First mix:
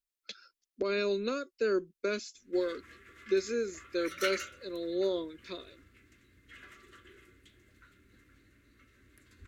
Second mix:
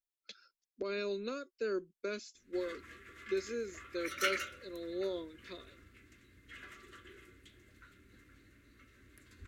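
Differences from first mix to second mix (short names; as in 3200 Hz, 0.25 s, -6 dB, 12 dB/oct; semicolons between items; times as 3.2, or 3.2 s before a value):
speech -6.5 dB; reverb: on, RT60 0.65 s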